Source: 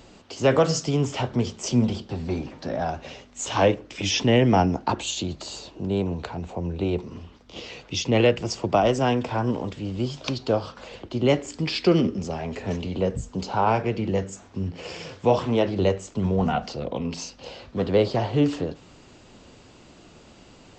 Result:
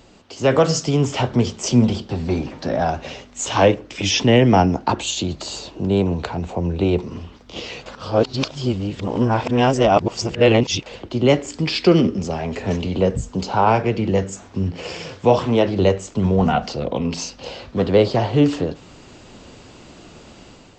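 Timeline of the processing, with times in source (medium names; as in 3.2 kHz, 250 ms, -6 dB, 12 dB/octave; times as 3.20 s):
7.86–10.86 s: reverse
whole clip: level rider gain up to 7 dB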